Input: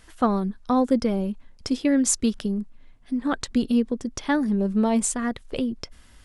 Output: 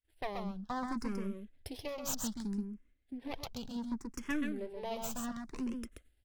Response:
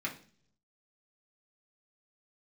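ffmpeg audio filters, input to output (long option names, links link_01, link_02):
-filter_complex "[0:a]agate=range=-33dB:threshold=-38dB:ratio=3:detection=peak,acrossover=split=440[link_01][link_02];[link_01]alimiter=level_in=1.5dB:limit=-24dB:level=0:latency=1:release=251,volume=-1.5dB[link_03];[link_02]aeval=exprs='max(val(0),0)':channel_layout=same[link_04];[link_03][link_04]amix=inputs=2:normalize=0,aecho=1:1:130:0.562,asplit=2[link_05][link_06];[link_06]afreqshift=0.66[link_07];[link_05][link_07]amix=inputs=2:normalize=1,volume=-6dB"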